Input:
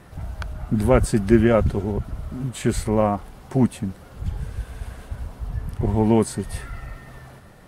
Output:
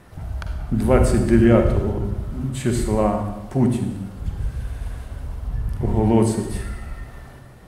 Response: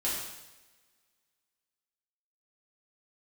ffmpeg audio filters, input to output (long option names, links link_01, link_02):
-filter_complex "[0:a]asplit=2[link_01][link_02];[1:a]atrim=start_sample=2205,lowshelf=frequency=300:gain=7.5,adelay=44[link_03];[link_02][link_03]afir=irnorm=-1:irlink=0,volume=-12dB[link_04];[link_01][link_04]amix=inputs=2:normalize=0,volume=-1dB"